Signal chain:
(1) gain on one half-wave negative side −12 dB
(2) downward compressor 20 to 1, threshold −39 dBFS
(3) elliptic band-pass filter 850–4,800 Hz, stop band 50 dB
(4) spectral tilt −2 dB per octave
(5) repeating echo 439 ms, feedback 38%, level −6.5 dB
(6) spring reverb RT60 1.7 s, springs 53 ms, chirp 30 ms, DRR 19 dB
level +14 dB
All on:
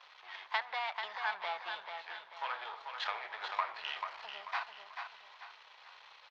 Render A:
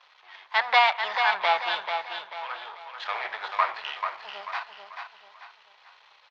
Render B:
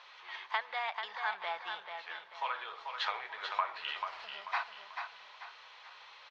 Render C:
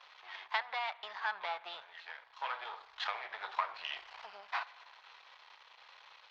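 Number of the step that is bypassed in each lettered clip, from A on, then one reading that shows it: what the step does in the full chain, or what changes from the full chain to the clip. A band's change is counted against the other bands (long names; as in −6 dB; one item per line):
2, average gain reduction 6.5 dB
1, distortion level −4 dB
5, echo-to-direct ratio −5.5 dB to −19.0 dB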